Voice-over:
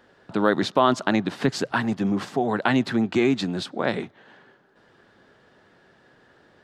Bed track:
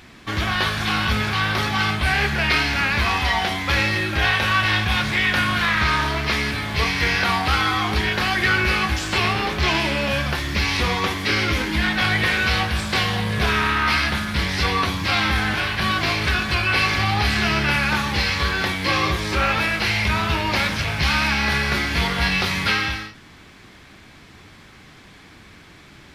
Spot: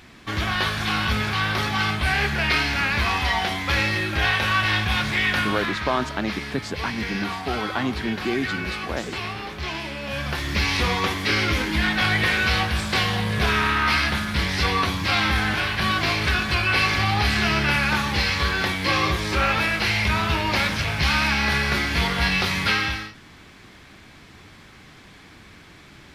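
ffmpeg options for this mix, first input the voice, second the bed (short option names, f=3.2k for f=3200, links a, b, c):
-filter_complex "[0:a]adelay=5100,volume=-5dB[a];[1:a]volume=7dB,afade=t=out:st=5.31:d=0.48:silence=0.398107,afade=t=in:st=10.02:d=0.5:silence=0.354813[b];[a][b]amix=inputs=2:normalize=0"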